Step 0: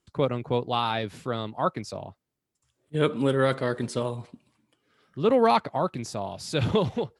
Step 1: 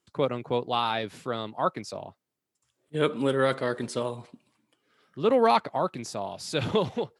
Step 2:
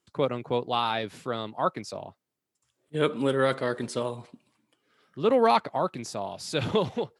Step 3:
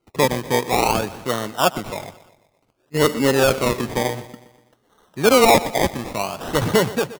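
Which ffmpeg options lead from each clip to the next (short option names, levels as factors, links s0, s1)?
-af "highpass=f=220:p=1"
-af anull
-af "acrusher=samples=25:mix=1:aa=0.000001:lfo=1:lforange=15:lforate=0.56,aeval=exprs='0.224*(abs(mod(val(0)/0.224+3,4)-2)-1)':c=same,aecho=1:1:122|244|366|488|610:0.141|0.0735|0.0382|0.0199|0.0103,volume=2.51"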